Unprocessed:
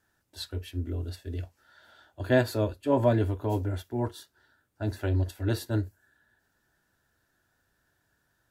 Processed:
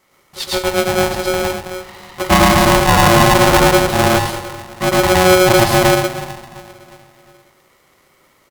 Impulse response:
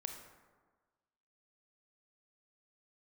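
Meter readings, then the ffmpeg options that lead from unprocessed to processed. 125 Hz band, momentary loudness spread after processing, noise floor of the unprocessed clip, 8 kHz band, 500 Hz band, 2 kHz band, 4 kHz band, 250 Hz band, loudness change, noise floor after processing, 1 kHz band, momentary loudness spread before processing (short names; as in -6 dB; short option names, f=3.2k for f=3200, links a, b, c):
+10.5 dB, 17 LU, -74 dBFS, +29.0 dB, +16.5 dB, +23.5 dB, +25.0 dB, +15.0 dB, +17.0 dB, -56 dBFS, +25.0 dB, 14 LU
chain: -filter_complex "[0:a]asplit=2[a][b];[b]adelay=354,lowpass=f=4.6k:p=1,volume=-20dB,asplit=2[c][d];[d]adelay=354,lowpass=f=4.6k:p=1,volume=0.54,asplit=2[e][f];[f]adelay=354,lowpass=f=4.6k:p=1,volume=0.54,asplit=2[g][h];[h]adelay=354,lowpass=f=4.6k:p=1,volume=0.54[i];[a][c][e][g][i]amix=inputs=5:normalize=0,asplit=2[j][k];[1:a]atrim=start_sample=2205,adelay=111[l];[k][l]afir=irnorm=-1:irlink=0,volume=5.5dB[m];[j][m]amix=inputs=2:normalize=0,alimiter=level_in=14dB:limit=-1dB:release=50:level=0:latency=1,aeval=exprs='val(0)*sgn(sin(2*PI*460*n/s))':c=same,volume=-1dB"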